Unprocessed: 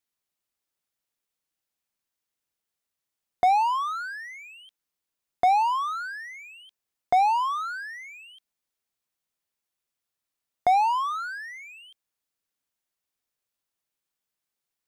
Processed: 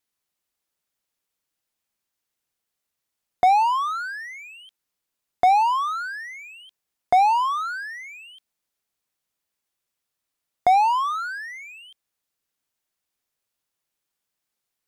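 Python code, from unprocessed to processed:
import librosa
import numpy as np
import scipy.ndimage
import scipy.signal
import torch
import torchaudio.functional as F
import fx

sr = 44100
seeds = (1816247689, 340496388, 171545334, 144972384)

y = fx.vibrato(x, sr, rate_hz=2.1, depth_cents=6.8)
y = y * librosa.db_to_amplitude(3.5)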